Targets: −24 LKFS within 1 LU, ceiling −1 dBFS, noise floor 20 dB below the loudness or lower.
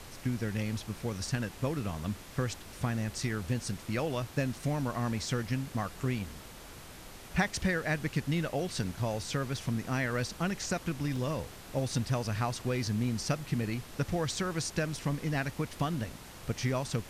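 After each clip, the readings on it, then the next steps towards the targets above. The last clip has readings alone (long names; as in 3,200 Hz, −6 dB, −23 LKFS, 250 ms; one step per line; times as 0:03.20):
number of dropouts 2; longest dropout 3.7 ms; background noise floor −49 dBFS; target noise floor −54 dBFS; integrated loudness −33.5 LKFS; sample peak −14.5 dBFS; target loudness −24.0 LKFS
→ repair the gap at 0:03.23/0:11.16, 3.7 ms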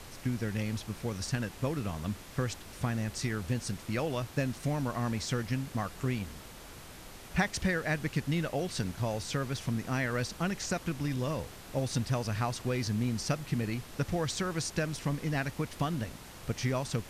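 number of dropouts 0; background noise floor −49 dBFS; target noise floor −54 dBFS
→ noise reduction from a noise print 6 dB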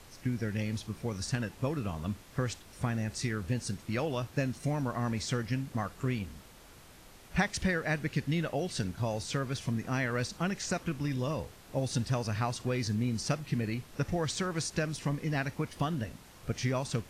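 background noise floor −54 dBFS; integrated loudness −33.5 LKFS; sample peak −14.5 dBFS; target loudness −24.0 LKFS
→ level +9.5 dB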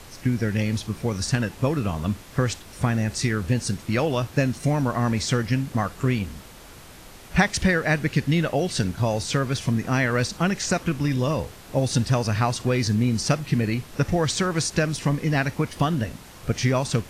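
integrated loudness −24.0 LKFS; sample peak −5.0 dBFS; background noise floor −45 dBFS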